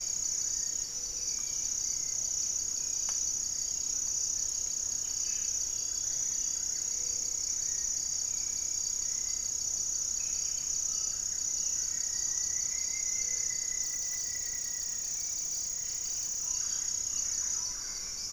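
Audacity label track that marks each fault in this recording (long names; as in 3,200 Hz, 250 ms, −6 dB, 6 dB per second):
13.820000	16.480000	clipping −31 dBFS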